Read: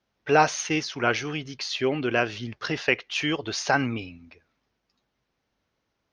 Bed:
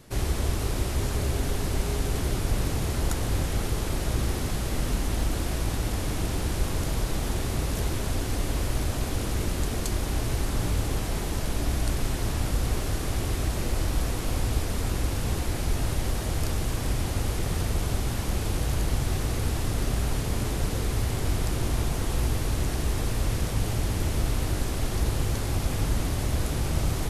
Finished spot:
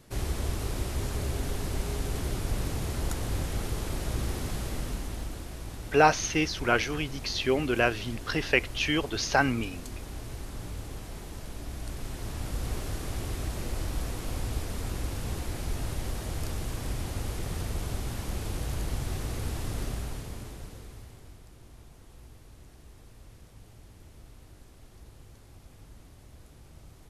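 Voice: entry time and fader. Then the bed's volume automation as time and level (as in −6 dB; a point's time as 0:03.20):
5.65 s, −1.0 dB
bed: 0:04.62 −4.5 dB
0:05.49 −12 dB
0:11.68 −12 dB
0:12.72 −6 dB
0:19.82 −6 dB
0:21.43 −25 dB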